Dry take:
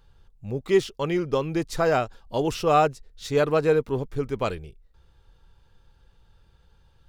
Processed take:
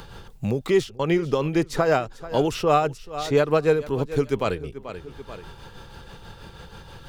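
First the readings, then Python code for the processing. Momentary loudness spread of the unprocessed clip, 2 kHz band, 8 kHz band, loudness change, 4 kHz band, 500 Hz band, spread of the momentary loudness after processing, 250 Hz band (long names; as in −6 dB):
11 LU, +1.5 dB, +1.0 dB, +1.5 dB, +2.0 dB, +1.5 dB, 17 LU, +3.0 dB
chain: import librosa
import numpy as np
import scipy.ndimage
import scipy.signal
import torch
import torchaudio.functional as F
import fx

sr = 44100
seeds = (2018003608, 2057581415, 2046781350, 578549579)

p1 = x * (1.0 - 0.5 / 2.0 + 0.5 / 2.0 * np.cos(2.0 * np.pi * 6.2 * (np.arange(len(x)) / sr)))
p2 = p1 + fx.echo_feedback(p1, sr, ms=435, feedback_pct=23, wet_db=-20, dry=0)
p3 = fx.band_squash(p2, sr, depth_pct=70)
y = F.gain(torch.from_numpy(p3), 4.0).numpy()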